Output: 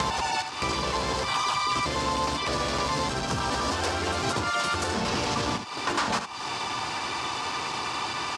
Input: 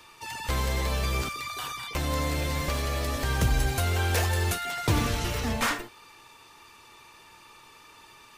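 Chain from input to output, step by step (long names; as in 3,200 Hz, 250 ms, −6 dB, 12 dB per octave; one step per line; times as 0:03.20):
slices reordered back to front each 103 ms, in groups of 6
dynamic equaliser 1,000 Hz, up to +6 dB, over −50 dBFS, Q 4.9
in parallel at −2 dB: brickwall limiter −23.5 dBFS, peak gain reduction 11 dB
on the sum: downward compressor 3 to 1, threshold −36 dBFS, peak gain reduction 14 dB
hard clipping −31.5 dBFS, distortion −15 dB
ambience of single reflections 15 ms −17 dB, 72 ms −9.5 dB
pitch-shifted copies added −7 semitones −15 dB, −3 semitones −3 dB
loudspeaker in its box 140–8,200 Hz, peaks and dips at 1,100 Hz +3 dB, 2,000 Hz −4 dB, 4,900 Hz +5 dB
multiband upward and downward compressor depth 70%
level +8.5 dB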